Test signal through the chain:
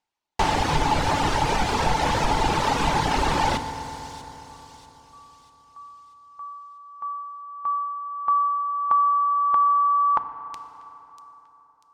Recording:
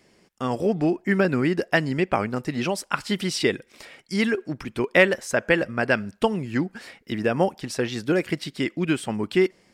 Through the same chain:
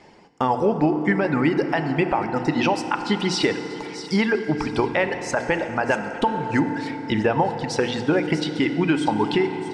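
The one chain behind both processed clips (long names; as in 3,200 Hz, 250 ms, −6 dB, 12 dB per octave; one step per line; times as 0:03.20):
reverb reduction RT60 2 s
parametric band 870 Hz +14 dB 0.34 octaves
mains-hum notches 60/120/180/240/300 Hz
downward compressor, threshold −25 dBFS
high-frequency loss of the air 98 metres
on a send: delay with a high-pass on its return 641 ms, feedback 43%, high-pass 4,900 Hz, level −8.5 dB
on the sum: feedback delay network reverb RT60 3.9 s, high-frequency decay 0.5×, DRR 8 dB
boost into a limiter +17 dB
level −8 dB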